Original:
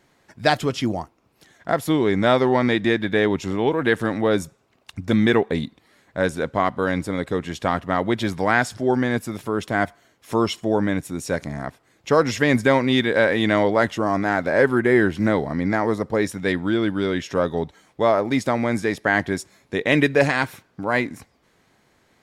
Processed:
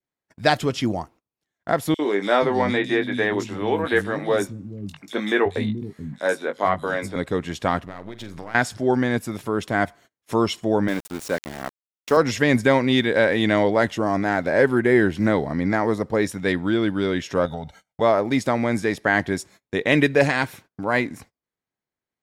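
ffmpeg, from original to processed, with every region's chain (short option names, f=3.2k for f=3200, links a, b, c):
-filter_complex "[0:a]asettb=1/sr,asplit=3[a][b][c];[a]atrim=end=1.944[d];[b]atrim=start=1.94:end=7.16,asetpts=PTS-STARTPTS,afade=t=in:d=0.004:c=qsin,afade=t=out:st=5.216:d=0.004:c=qsin,lowshelf=f=250:g=-6,asplit=2[e][f];[f]adelay=20,volume=-7dB[g];[e][g]amix=inputs=2:normalize=0,atrim=end_sample=230202,acrossover=split=230|3500[h][i][j];[i]adelay=50[k];[h]adelay=480[l];[l][k][j]amix=inputs=3:normalize=0,atrim=end_sample=230202[m];[c]atrim=start=7.156[n];[d][m]acrossfade=d=0.004:c1=hsin:c2=qsin[o];[o][n]acrossfade=d=0.004:c1=qsin:c2=hsin,asettb=1/sr,asplit=3[p][q][r];[p]atrim=end=7.854[s];[q]atrim=start=7.85:end=8.55,asetpts=PTS-STARTPTS,afade=t=in:d=0.004:c=qsin,afade=t=out:st=0.696:d=0.004:c=qsin,aeval=exprs='if(lt(val(0),0),0.447*val(0),val(0))':c=same,acompressor=threshold=-31dB:ratio=8:attack=3.2:release=140:knee=1:detection=peak,asplit=2[t][u];[u]adelay=45,volume=-12.5dB[v];[t][v]amix=inputs=2:normalize=0,atrim=end_sample=30870[w];[r]atrim=start=8.546[x];[s][w]acrossfade=d=0.004:c1=hsin:c2=qsin[y];[y][x]acrossfade=d=0.004:c1=qsin:c2=hsin,asettb=1/sr,asplit=3[z][aa][ab];[z]atrim=end=10.884[ac];[aa]atrim=start=10.88:end=12.17,asetpts=PTS-STARTPTS,afade=t=in:d=0.004:c=qsin,afade=t=out:st=1.286:d=0.004:c=qsin,highpass=220,aeval=exprs='val(0)*gte(abs(val(0)),0.0266)':c=same[ad];[ab]atrim=start=12.166[ae];[ac][ad]acrossfade=d=0.004:c1=hsin:c2=qsin[af];[af][ae]acrossfade=d=0.004:c1=qsin:c2=hsin,asettb=1/sr,asplit=3[ag][ah][ai];[ag]atrim=end=17.454[aj];[ah]atrim=start=17.45:end=18.01,asetpts=PTS-STARTPTS,afade=t=in:d=0.004:c=qsin,afade=t=out:st=0.556:d=0.004:c=qsin,acompressor=threshold=-27dB:ratio=4:attack=3.2:release=140:knee=1:detection=peak,agate=range=-33dB:threshold=-58dB:ratio=3:release=100:detection=peak,aecho=1:1:1.4:0.94,atrim=end_sample=24696[ak];[ai]atrim=start=18.006[al];[aj][ak]acrossfade=d=0.004:c1=hsin:c2=qsin[am];[am][al]acrossfade=d=0.004:c1=qsin:c2=hsin,agate=range=-30dB:threshold=-46dB:ratio=16:detection=peak,adynamicequalizer=threshold=0.0178:dfrequency=1200:dqfactor=2.4:tfrequency=1200:tqfactor=2.4:attack=5:release=100:ratio=0.375:range=2:mode=cutabove:tftype=bell"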